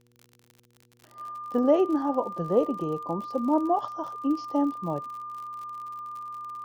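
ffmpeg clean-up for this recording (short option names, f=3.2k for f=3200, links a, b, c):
-af "adeclick=t=4,bandreject=f=120:t=h:w=4,bandreject=f=240:t=h:w=4,bandreject=f=360:t=h:w=4,bandreject=f=480:t=h:w=4,bandreject=f=1.2k:w=30"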